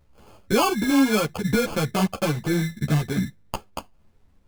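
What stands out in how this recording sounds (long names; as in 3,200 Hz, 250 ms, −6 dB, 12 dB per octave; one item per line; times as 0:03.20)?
aliases and images of a low sample rate 1,900 Hz, jitter 0%
a shimmering, thickened sound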